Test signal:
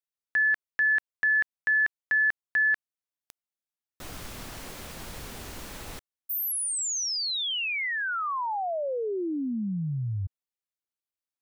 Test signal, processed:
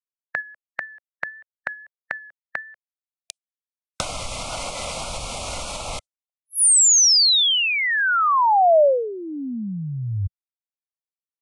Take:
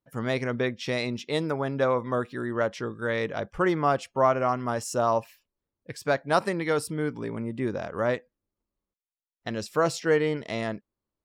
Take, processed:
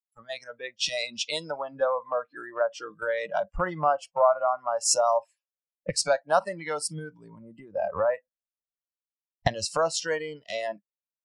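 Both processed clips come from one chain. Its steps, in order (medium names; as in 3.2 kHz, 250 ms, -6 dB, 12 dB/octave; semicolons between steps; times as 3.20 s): recorder AGC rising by 37 dB/s, up to +32 dB; spectral noise reduction 21 dB; resonant low shelf 480 Hz -6 dB, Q 3; compression 2:1, threshold -25 dBFS; vibrato 1.6 Hz 30 cents; resampled via 22.05 kHz; three bands expanded up and down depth 100%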